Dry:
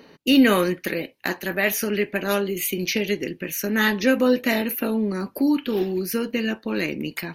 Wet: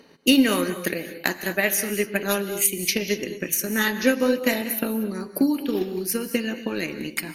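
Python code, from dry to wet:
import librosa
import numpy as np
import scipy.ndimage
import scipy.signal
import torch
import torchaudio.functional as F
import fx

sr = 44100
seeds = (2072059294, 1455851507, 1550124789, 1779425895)

y = fx.peak_eq(x, sr, hz=8800.0, db=11.0, octaves=0.95)
y = fx.transient(y, sr, attack_db=8, sustain_db=-2)
y = fx.rev_gated(y, sr, seeds[0], gate_ms=260, shape='rising', drr_db=10.5)
y = F.gain(torch.from_numpy(y), -4.5).numpy()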